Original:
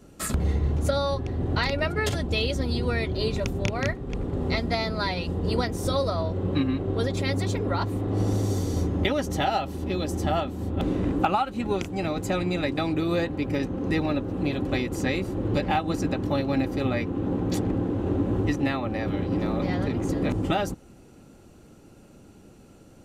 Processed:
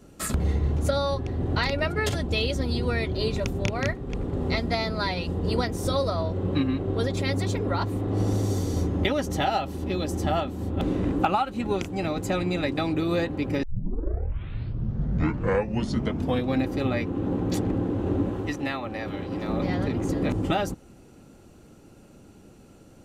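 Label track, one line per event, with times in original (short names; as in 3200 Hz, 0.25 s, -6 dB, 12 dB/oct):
13.630000	13.630000	tape start 3.03 s
18.290000	19.490000	low shelf 430 Hz -7.5 dB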